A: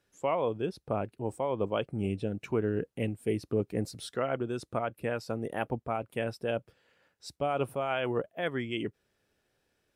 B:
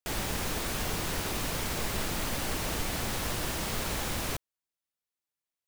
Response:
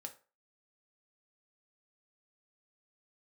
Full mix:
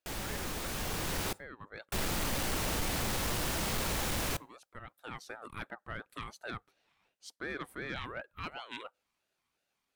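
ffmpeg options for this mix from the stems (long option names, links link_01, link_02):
-filter_complex "[0:a]highpass=frequency=750:poles=1,aeval=exprs='val(0)*sin(2*PI*850*n/s+850*0.3/2.8*sin(2*PI*2.8*n/s))':channel_layout=same,volume=-2dB,afade=type=in:start_time=4.96:duration=0.23:silence=0.398107,asplit=2[link_01][link_02];[link_02]volume=-21dB[link_03];[1:a]dynaudnorm=framelen=300:gausssize=7:maxgain=7dB,volume=-7dB,asplit=3[link_04][link_05][link_06];[link_04]atrim=end=1.33,asetpts=PTS-STARTPTS,afade=type=out:start_time=1.326:duration=0.004:curve=hsin[link_07];[link_05]atrim=start=1.33:end=1.92,asetpts=PTS-STARTPTS,volume=0[link_08];[link_06]atrim=start=1.92,asetpts=PTS-STARTPTS,afade=type=in:duration=0.004:curve=hsin[link_09];[link_07][link_08][link_09]concat=n=3:v=0:a=1,asplit=2[link_10][link_11];[link_11]volume=-9.5dB[link_12];[2:a]atrim=start_sample=2205[link_13];[link_03][link_12]amix=inputs=2:normalize=0[link_14];[link_14][link_13]afir=irnorm=-1:irlink=0[link_15];[link_01][link_10][link_15]amix=inputs=3:normalize=0,asoftclip=type=tanh:threshold=-26.5dB"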